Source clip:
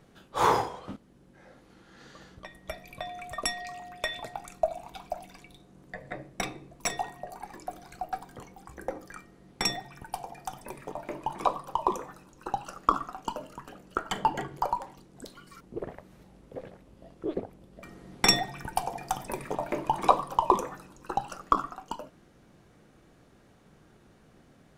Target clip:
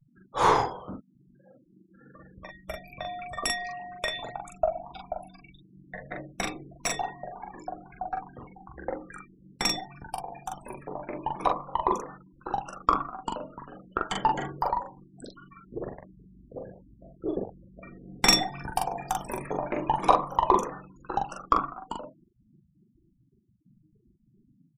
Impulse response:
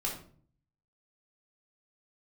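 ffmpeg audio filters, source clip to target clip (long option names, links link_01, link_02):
-af "afftfilt=real='re*gte(hypot(re,im),0.00794)':imag='im*gte(hypot(re,im),0.00794)':win_size=1024:overlap=0.75,aeval=exprs='0.596*(cos(1*acos(clip(val(0)/0.596,-1,1)))-cos(1*PI/2))+0.0168*(cos(6*acos(clip(val(0)/0.596,-1,1)))-cos(6*PI/2))':channel_layout=same,aecho=1:1:16|42:0.178|0.708"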